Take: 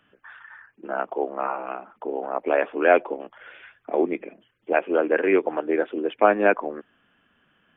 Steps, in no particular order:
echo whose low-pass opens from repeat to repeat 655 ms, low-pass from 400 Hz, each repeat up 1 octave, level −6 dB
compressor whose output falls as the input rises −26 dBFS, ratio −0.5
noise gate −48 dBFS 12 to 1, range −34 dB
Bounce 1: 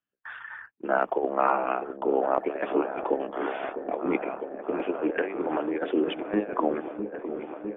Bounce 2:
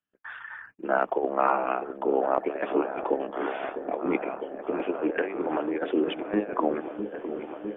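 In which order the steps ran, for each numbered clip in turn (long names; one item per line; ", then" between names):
noise gate, then compressor whose output falls as the input rises, then echo whose low-pass opens from repeat to repeat
compressor whose output falls as the input rises, then echo whose low-pass opens from repeat to repeat, then noise gate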